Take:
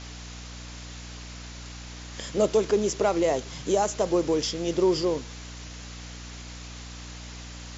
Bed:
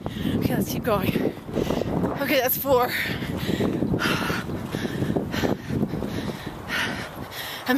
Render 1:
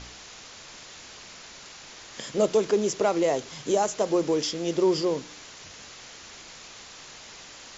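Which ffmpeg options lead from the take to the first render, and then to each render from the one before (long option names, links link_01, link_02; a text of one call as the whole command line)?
ffmpeg -i in.wav -af "bandreject=frequency=60:width_type=h:width=4,bandreject=frequency=120:width_type=h:width=4,bandreject=frequency=180:width_type=h:width=4,bandreject=frequency=240:width_type=h:width=4,bandreject=frequency=300:width_type=h:width=4" out.wav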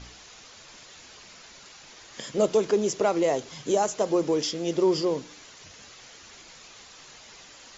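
ffmpeg -i in.wav -af "afftdn=noise_reduction=6:noise_floor=-46" out.wav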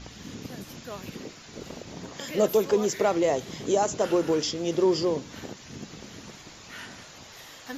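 ffmpeg -i in.wav -i bed.wav -filter_complex "[1:a]volume=-16.5dB[link_01];[0:a][link_01]amix=inputs=2:normalize=0" out.wav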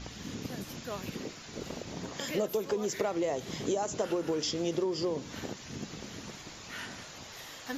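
ffmpeg -i in.wav -af "acompressor=threshold=-27dB:ratio=12" out.wav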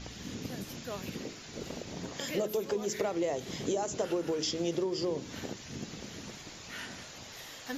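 ffmpeg -i in.wav -af "equalizer=frequency=1100:width=1.5:gain=-3,bandreject=frequency=53.11:width_type=h:width=4,bandreject=frequency=106.22:width_type=h:width=4,bandreject=frequency=159.33:width_type=h:width=4,bandreject=frequency=212.44:width_type=h:width=4,bandreject=frequency=265.55:width_type=h:width=4,bandreject=frequency=318.66:width_type=h:width=4,bandreject=frequency=371.77:width_type=h:width=4,bandreject=frequency=424.88:width_type=h:width=4" out.wav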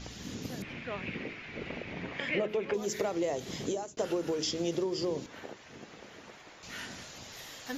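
ffmpeg -i in.wav -filter_complex "[0:a]asettb=1/sr,asplit=3[link_01][link_02][link_03];[link_01]atrim=end=0.624[link_04];[link_02]atrim=start=0.62:end=2.74,asetpts=PTS-STARTPTS,afade=type=in:duration=0.004:curve=qsin,afade=type=out:start_time=2.116:duration=0.004:curve=qsin,lowpass=frequency=2300:width_type=q:width=3.8[link_05];[link_03]atrim=start=2.736[link_06];[link_04][link_05]acrossfade=duration=0.004:curve1=hsin:curve2=qsin[link_07];[link_07][link_06]acrossfade=duration=0.004:curve1=qsin:curve2=hsin,asettb=1/sr,asplit=3[link_08][link_09][link_10];[link_08]atrim=end=5.264[link_11];[link_09]atrim=start=5.26:end=6.63,asetpts=PTS-STARTPTS,afade=type=in:duration=0.004:curve=qsin,afade=type=out:start_time=1.366:duration=0.004:curve=qsin,acrossover=split=390 2700:gain=0.224 1 0.224[link_12][link_13][link_14];[link_12][link_13][link_14]amix=inputs=3:normalize=0[link_15];[link_10]atrim=start=6.626[link_16];[link_11][link_15]acrossfade=duration=0.004:curve1=hsin:curve2=qsin[link_17];[link_17][link_16]acrossfade=duration=0.004:curve1=qsin:curve2=hsin,asplit=2[link_18][link_19];[link_18]atrim=end=3.97,asetpts=PTS-STARTPTS,afade=type=out:start_time=3.55:duration=0.42:curve=qsin[link_20];[link_19]atrim=start=3.97,asetpts=PTS-STARTPTS,afade=type=in:duration=0.004:curve=hsin[link_21];[link_20][link_21]concat=n=2:v=0:a=1" out.wav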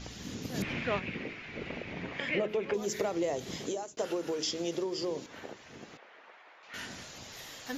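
ffmpeg -i in.wav -filter_complex "[0:a]asplit=3[link_01][link_02][link_03];[link_01]afade=type=out:start_time=0.54:duration=0.02[link_04];[link_02]acontrast=72,afade=type=in:start_time=0.54:duration=0.02,afade=type=out:start_time=0.98:duration=0.02[link_05];[link_03]afade=type=in:start_time=0.98:duration=0.02[link_06];[link_04][link_05][link_06]amix=inputs=3:normalize=0,asettb=1/sr,asplit=3[link_07][link_08][link_09];[link_07]atrim=end=3.584[link_10];[link_08]atrim=start=3.58:end=5.3,asetpts=PTS-STARTPTS,afade=type=in:duration=0.004:curve=qsin,afade=type=out:start_time=1.716:duration=0.004:curve=qsin,lowshelf=frequency=180:gain=-10.5[link_11];[link_09]atrim=start=5.296[link_12];[link_10][link_11]acrossfade=duration=0.004:curve1=hsin:curve2=qsin[link_13];[link_13][link_12]acrossfade=duration=0.004:curve1=qsin:curve2=hsin,asettb=1/sr,asplit=3[link_14][link_15][link_16];[link_14]atrim=end=5.974[link_17];[link_15]atrim=start=5.97:end=6.74,asetpts=PTS-STARTPTS,afade=type=in:duration=0.004:curve=qsin,afade=type=out:start_time=0.766:duration=0.004:curve=qsin,highpass=690,lowpass=2300[link_18];[link_16]atrim=start=6.736[link_19];[link_17][link_18]acrossfade=duration=0.004:curve1=hsin:curve2=qsin[link_20];[link_20][link_19]acrossfade=duration=0.004:curve1=qsin:curve2=hsin" out.wav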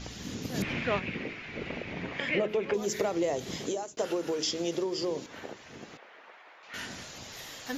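ffmpeg -i in.wav -af "volume=2.5dB" out.wav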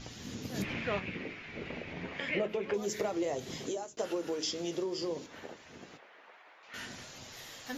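ffmpeg -i in.wav -af "flanger=delay=7.6:depth=5.1:regen=-56:speed=0.28:shape=triangular" out.wav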